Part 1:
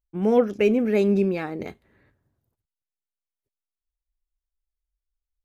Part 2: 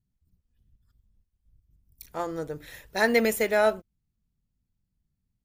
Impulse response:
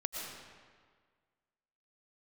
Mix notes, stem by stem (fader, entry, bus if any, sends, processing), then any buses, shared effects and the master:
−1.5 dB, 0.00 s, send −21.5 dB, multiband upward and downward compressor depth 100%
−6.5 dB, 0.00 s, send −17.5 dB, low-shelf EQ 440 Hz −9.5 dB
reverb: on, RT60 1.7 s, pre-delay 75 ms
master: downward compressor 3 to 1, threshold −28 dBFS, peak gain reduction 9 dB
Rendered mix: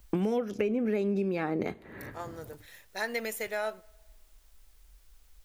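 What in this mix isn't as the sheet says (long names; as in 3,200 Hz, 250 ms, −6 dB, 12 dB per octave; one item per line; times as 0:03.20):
stem 2: send −17.5 dB → −23.5 dB
reverb return −9.0 dB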